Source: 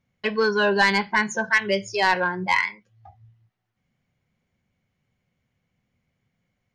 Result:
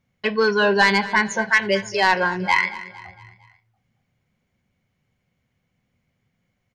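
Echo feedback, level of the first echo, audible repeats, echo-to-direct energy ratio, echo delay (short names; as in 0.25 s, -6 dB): 47%, -16.5 dB, 3, -15.5 dB, 0.228 s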